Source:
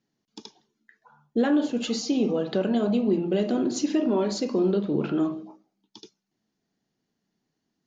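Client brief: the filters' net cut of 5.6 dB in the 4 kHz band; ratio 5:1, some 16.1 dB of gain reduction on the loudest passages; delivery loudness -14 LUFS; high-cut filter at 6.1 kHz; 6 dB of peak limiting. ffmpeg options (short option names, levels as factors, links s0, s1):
-af "lowpass=6100,equalizer=f=4000:t=o:g=-6.5,acompressor=threshold=0.0126:ratio=5,volume=25.1,alimiter=limit=0.596:level=0:latency=1"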